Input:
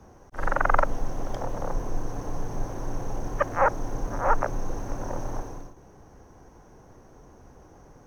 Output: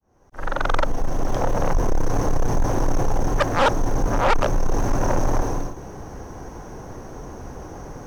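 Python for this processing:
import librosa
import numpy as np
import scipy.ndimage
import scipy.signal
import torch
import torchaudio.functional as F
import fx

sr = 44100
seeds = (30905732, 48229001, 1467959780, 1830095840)

p1 = fx.fade_in_head(x, sr, length_s=1.98)
p2 = fx.rider(p1, sr, range_db=4, speed_s=0.5)
p3 = p1 + F.gain(torch.from_numpy(p2), -0.5).numpy()
p4 = 10.0 ** (-20.0 / 20.0) * np.tanh(p3 / 10.0 ** (-20.0 / 20.0))
y = F.gain(torch.from_numpy(p4), 7.0).numpy()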